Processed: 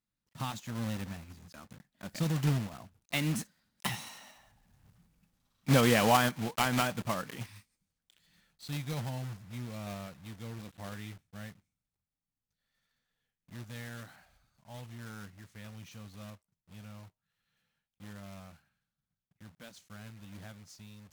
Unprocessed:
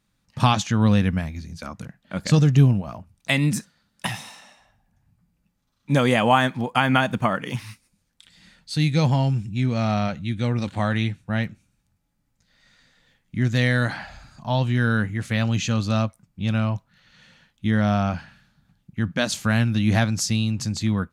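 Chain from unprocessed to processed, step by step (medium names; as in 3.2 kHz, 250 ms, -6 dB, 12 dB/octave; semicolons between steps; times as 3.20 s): block-companded coder 3-bit; Doppler pass-by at 4.94 s, 17 m/s, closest 9.1 m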